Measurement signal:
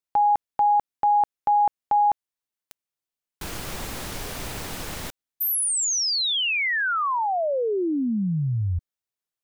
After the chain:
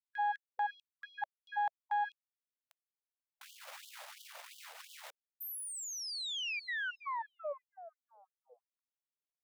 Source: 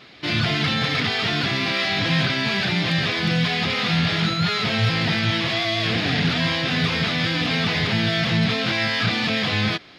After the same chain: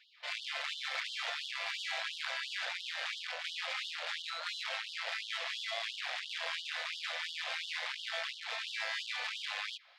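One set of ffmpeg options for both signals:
-af "bass=f=250:g=8,treble=f=4000:g=-6,aeval=exprs='(tanh(7.08*val(0)+0.75)-tanh(0.75))/7.08':c=same,afftfilt=real='re*gte(b*sr/1024,470*pow(2900/470,0.5+0.5*sin(2*PI*2.9*pts/sr)))':imag='im*gte(b*sr/1024,470*pow(2900/470,0.5+0.5*sin(2*PI*2.9*pts/sr)))':win_size=1024:overlap=0.75,volume=0.376"

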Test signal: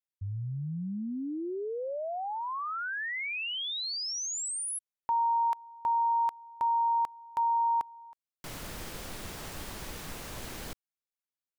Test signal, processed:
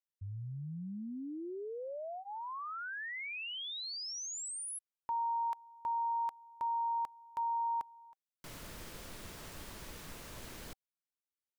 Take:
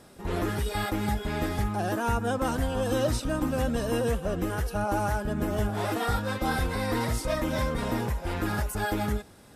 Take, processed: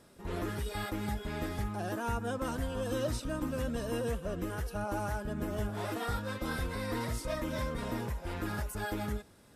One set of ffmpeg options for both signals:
-af "bandreject=f=780:w=12,volume=0.447"

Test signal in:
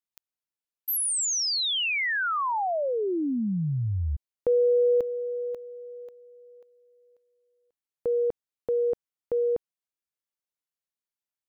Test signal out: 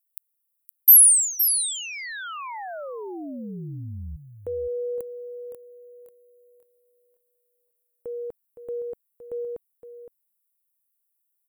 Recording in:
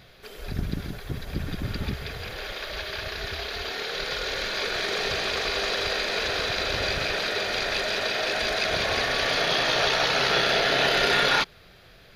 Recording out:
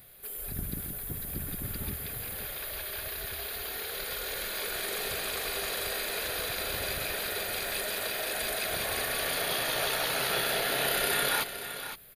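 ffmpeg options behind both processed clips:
-af "aecho=1:1:515:0.299,aexciter=amount=14.1:drive=7:freq=8400,volume=0.398"

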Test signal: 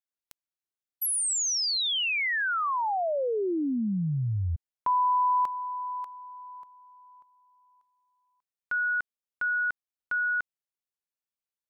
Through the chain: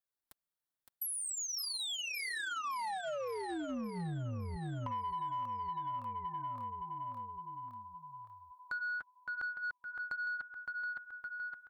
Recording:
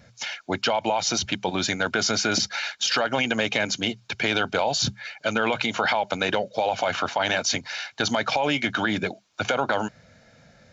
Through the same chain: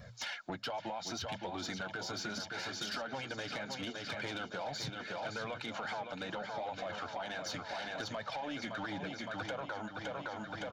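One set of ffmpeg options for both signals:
-filter_complex "[0:a]flanger=delay=1.7:depth=5.1:regen=-21:speed=0.73:shape=sinusoidal,equalizer=f=400:t=o:w=0.67:g=-5,equalizer=f=2500:t=o:w=0.67:g=-7,equalizer=f=6300:t=o:w=0.67:g=-8,asplit=2[s0][s1];[s1]aecho=0:1:564|1128|1692|2256|2820|3384|3948:0.398|0.223|0.125|0.0699|0.0392|0.0219|0.0123[s2];[s0][s2]amix=inputs=2:normalize=0,acompressor=threshold=0.01:ratio=8:attack=12:release=379:knee=6:detection=rms,asoftclip=type=tanh:threshold=0.015,volume=1.88"

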